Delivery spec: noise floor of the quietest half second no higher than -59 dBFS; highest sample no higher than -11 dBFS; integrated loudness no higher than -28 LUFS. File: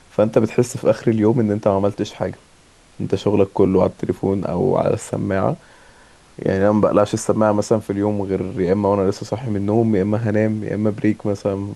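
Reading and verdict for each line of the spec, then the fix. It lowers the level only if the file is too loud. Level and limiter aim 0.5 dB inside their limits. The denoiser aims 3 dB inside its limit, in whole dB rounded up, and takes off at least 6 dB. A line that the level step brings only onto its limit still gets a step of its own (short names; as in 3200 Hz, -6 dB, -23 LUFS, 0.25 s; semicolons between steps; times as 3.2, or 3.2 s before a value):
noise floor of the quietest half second -50 dBFS: fail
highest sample -2.5 dBFS: fail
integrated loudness -19.0 LUFS: fail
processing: gain -9.5 dB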